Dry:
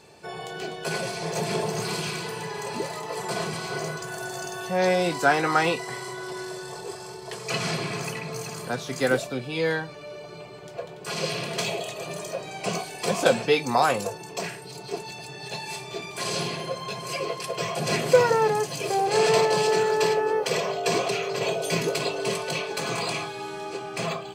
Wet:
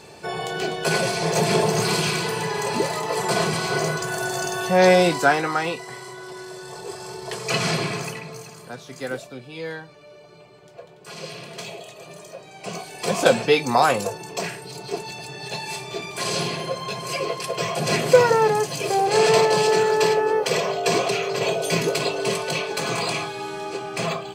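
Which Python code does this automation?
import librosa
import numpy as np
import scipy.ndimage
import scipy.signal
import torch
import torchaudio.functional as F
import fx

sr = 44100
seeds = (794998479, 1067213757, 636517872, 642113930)

y = fx.gain(x, sr, db=fx.line((4.99, 7.5), (5.59, -2.5), (6.45, -2.5), (7.21, 5.0), (7.83, 5.0), (8.55, -7.0), (12.52, -7.0), (13.2, 3.5)))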